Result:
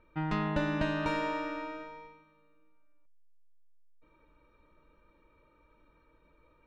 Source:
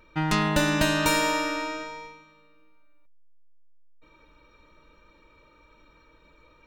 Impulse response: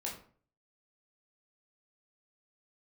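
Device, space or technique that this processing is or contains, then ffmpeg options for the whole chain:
phone in a pocket: -af "lowpass=3600,highshelf=frequency=2200:gain=-9,volume=-6.5dB"

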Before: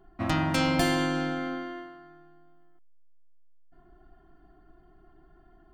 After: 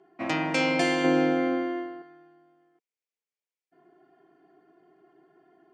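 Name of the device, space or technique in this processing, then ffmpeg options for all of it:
television speaker: -filter_complex "[0:a]asettb=1/sr,asplit=3[link_01][link_02][link_03];[link_01]atrim=end=1.044[link_04];[link_02]atrim=start=1.04:end=2.02,asetpts=PTS-STARTPTS,afade=type=in:duration=0.004:curve=qsin,afade=type=out:start_time=0.976:duration=0.004:curve=qsin,equalizer=frequency=300:width=0.33:gain=8[link_05];[link_03]atrim=start=2.016[link_06];[link_04][link_05]acrossfade=duration=0.004:curve1=hsin:curve2=qsin[link_07];[link_07][link_06]acrossfade=duration=0.004:curve1=qsin:curve2=hsin,highpass=frequency=180:width=0.5412,highpass=frequency=180:width=1.3066,equalizer=frequency=210:width_type=q:width=4:gain=-8,equalizer=frequency=450:width_type=q:width=4:gain=10,equalizer=frequency=1300:width_type=q:width=4:gain=-5,equalizer=frequency=2300:width_type=q:width=4:gain=8,equalizer=frequency=3800:width_type=q:width=4:gain=-4,lowpass=frequency=7900:width=0.5412,lowpass=frequency=7900:width=1.3066"

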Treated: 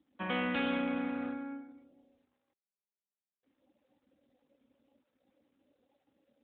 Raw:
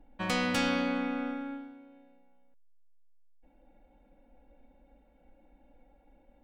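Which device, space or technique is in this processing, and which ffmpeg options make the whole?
mobile call with aggressive noise cancelling: -af "highpass=frequency=170:width=0.5412,highpass=frequency=170:width=1.3066,afftdn=noise_reduction=30:noise_floor=-55,volume=-2.5dB" -ar 8000 -c:a libopencore_amrnb -b:a 12200

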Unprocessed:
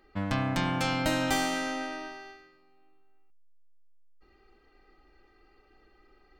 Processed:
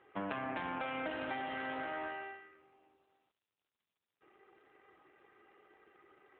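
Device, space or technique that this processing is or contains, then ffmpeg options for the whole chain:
voicemail: -filter_complex "[0:a]asettb=1/sr,asplit=3[link_01][link_02][link_03];[link_01]atrim=end=0.574[link_04];[link_02]atrim=start=0.57:end=1.23,asetpts=PTS-STARTPTS,afade=type=in:duration=0.004:curve=qsin,afade=type=out:start_time=0.656:duration=0.004:curve=qsin,lowpass=12000[link_05];[link_03]atrim=start=1.226[link_06];[link_04][link_05]acrossfade=duration=0.004:curve1=hsin:curve2=qsin[link_07];[link_07][link_06]acrossfade=duration=0.004:curve1=qsin:curve2=hsin,highpass=330,lowpass=3000,acompressor=threshold=-37dB:ratio=10,volume=3dB" -ar 8000 -c:a libopencore_amrnb -b:a 7400

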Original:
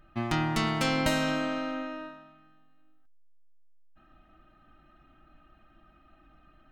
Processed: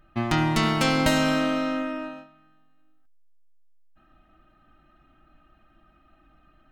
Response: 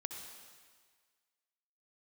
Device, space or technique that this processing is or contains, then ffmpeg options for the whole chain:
keyed gated reverb: -filter_complex "[0:a]asplit=3[link_01][link_02][link_03];[1:a]atrim=start_sample=2205[link_04];[link_02][link_04]afir=irnorm=-1:irlink=0[link_05];[link_03]apad=whole_len=296113[link_06];[link_05][link_06]sidechaingate=range=-33dB:threshold=-49dB:ratio=16:detection=peak,volume=1dB[link_07];[link_01][link_07]amix=inputs=2:normalize=0"

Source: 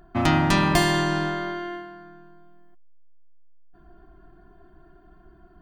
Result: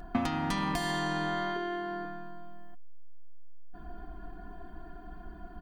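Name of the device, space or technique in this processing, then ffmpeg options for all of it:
serial compression, leveller first: -filter_complex "[0:a]asettb=1/sr,asplit=3[link_01][link_02][link_03];[link_01]atrim=end=1.564[link_04];[link_02]atrim=start=1.56:end=2.05,asetpts=PTS-STARTPTS,afade=type=in:duration=0.004:curve=qsin,afade=type=out:start_time=0.486:duration=0.004:curve=qsin,equalizer=frequency=390:width=5.7:gain=14.5[link_05];[link_03]atrim=start=2.046[link_06];[link_04][link_05]acrossfade=duration=0.004:curve1=hsin:curve2=qsin[link_07];[link_07][link_06]acrossfade=duration=0.004:curve1=qsin:curve2=hsin,acompressor=threshold=-23dB:ratio=6,acompressor=threshold=-34dB:ratio=10,aecho=1:1:4.1:0.58,volume=5.5dB"

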